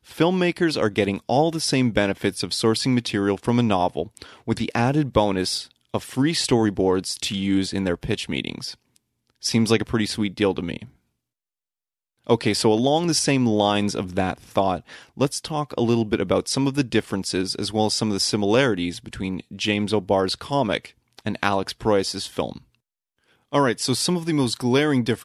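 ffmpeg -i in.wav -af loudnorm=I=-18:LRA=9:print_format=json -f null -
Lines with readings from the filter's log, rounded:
"input_i" : "-22.5",
"input_tp" : "-2.9",
"input_lra" : "3.3",
"input_thresh" : "-32.9",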